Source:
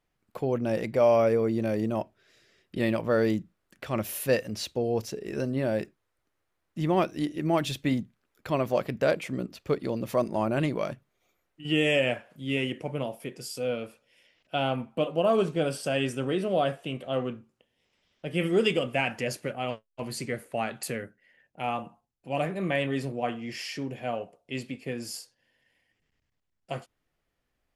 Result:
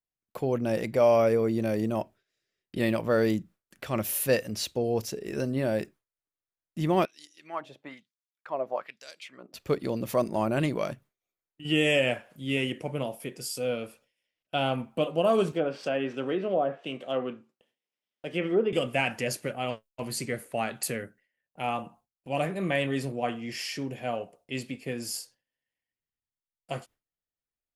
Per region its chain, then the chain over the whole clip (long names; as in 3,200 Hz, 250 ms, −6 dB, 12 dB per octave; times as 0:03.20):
0:07.05–0:09.54: high-pass filter 110 Hz + auto-filter band-pass sine 1.1 Hz 590–6,300 Hz
0:15.52–0:18.73: running median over 5 samples + high-pass filter 230 Hz + treble cut that deepens with the level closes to 1,000 Hz, closed at −21.5 dBFS
whole clip: noise gate with hold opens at −49 dBFS; high-shelf EQ 6,600 Hz +7 dB